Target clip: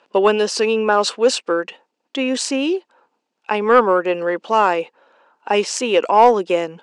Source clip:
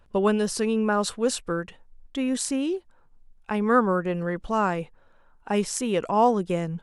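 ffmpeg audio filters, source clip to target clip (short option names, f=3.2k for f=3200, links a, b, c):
-af "highpass=f=280:w=0.5412,highpass=f=280:w=1.3066,equalizer=f=510:t=q:w=4:g=3,equalizer=f=890:t=q:w=4:g=4,equalizer=f=2.7k:t=q:w=4:g=7,equalizer=f=4.6k:t=q:w=4:g=4,lowpass=f=7.4k:w=0.5412,lowpass=f=7.4k:w=1.3066,acontrast=66,volume=1.5dB"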